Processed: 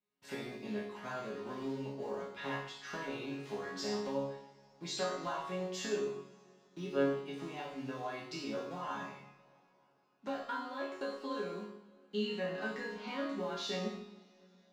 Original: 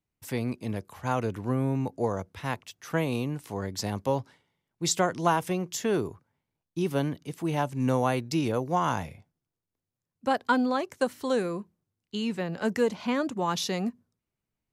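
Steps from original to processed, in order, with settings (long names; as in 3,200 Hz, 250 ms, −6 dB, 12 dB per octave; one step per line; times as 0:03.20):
one scale factor per block 5 bits
three-way crossover with the lows and the highs turned down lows −22 dB, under 160 Hz, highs −23 dB, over 5,400 Hz
downward compressor 4 to 1, threshold −36 dBFS, peak gain reduction 14.5 dB
resonators tuned to a chord C#3 sus4, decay 0.51 s
convolution reverb, pre-delay 3 ms, DRR −1.5 dB
level +14.5 dB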